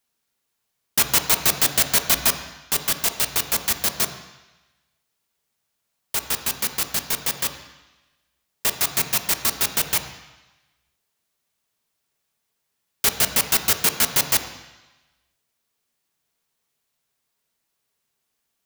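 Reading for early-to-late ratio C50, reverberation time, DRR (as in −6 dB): 9.0 dB, 1.1 s, 6.0 dB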